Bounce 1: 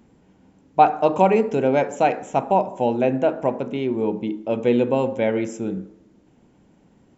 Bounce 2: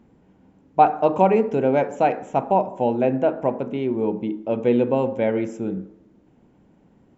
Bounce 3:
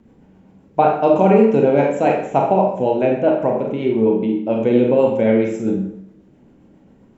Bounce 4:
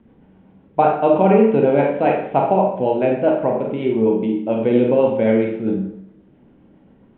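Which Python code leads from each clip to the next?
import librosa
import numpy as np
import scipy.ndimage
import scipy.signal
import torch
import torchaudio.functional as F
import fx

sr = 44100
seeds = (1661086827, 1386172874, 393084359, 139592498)

y1 = fx.high_shelf(x, sr, hz=3400.0, db=-11.0)
y2 = fx.rotary(y1, sr, hz=7.5)
y2 = fx.rev_schroeder(y2, sr, rt60_s=0.55, comb_ms=28, drr_db=0.5)
y2 = F.gain(torch.from_numpy(y2), 5.0).numpy()
y3 = scipy.signal.sosfilt(scipy.signal.ellip(4, 1.0, 50, 3500.0, 'lowpass', fs=sr, output='sos'), y2)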